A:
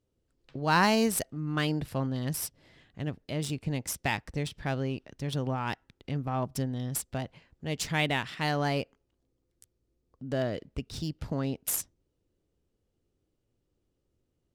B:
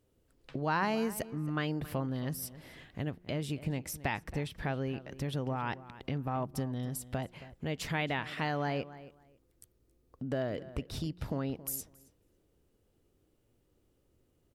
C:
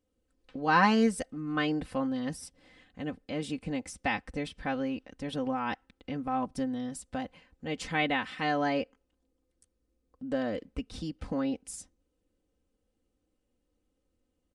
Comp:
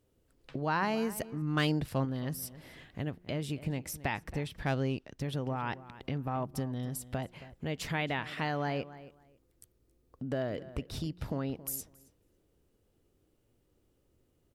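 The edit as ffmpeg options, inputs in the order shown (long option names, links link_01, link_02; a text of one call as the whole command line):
ffmpeg -i take0.wav -i take1.wav -filter_complex "[0:a]asplit=2[link_01][link_02];[1:a]asplit=3[link_03][link_04][link_05];[link_03]atrim=end=1.422[link_06];[link_01]atrim=start=1.418:end=2.052[link_07];[link_04]atrim=start=2.048:end=4.632[link_08];[link_02]atrim=start=4.628:end=5.212[link_09];[link_05]atrim=start=5.208[link_10];[link_06][link_07]acrossfade=duration=0.004:curve1=hsin:curve2=hsin[link_11];[link_11][link_08]acrossfade=duration=0.004:curve1=hsin:curve2=hsin[link_12];[link_12][link_09]acrossfade=duration=0.004:curve1=hsin:curve2=hsin[link_13];[link_13][link_10]acrossfade=duration=0.004:curve1=hsin:curve2=hsin" out.wav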